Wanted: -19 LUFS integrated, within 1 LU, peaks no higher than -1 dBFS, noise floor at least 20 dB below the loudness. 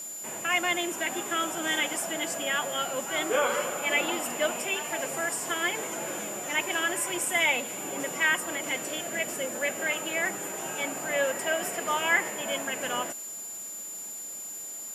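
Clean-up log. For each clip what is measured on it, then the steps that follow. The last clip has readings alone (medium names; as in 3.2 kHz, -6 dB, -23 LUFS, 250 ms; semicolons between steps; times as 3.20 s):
steady tone 7.1 kHz; tone level -37 dBFS; noise floor -39 dBFS; noise floor target -49 dBFS; loudness -28.5 LUFS; peak level -12.0 dBFS; loudness target -19.0 LUFS
-> band-stop 7.1 kHz, Q 30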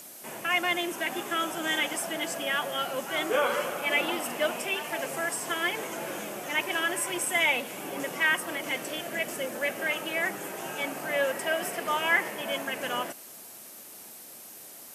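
steady tone not found; noise floor -47 dBFS; noise floor target -49 dBFS
-> noise print and reduce 6 dB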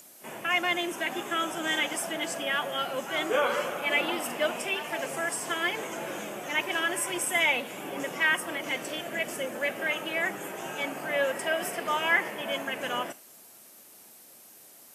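noise floor -53 dBFS; loudness -29.0 LUFS; peak level -12.0 dBFS; loudness target -19.0 LUFS
-> trim +10 dB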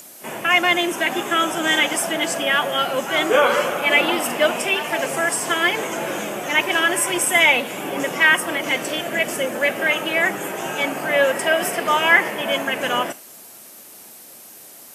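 loudness -19.0 LUFS; peak level -2.0 dBFS; noise floor -43 dBFS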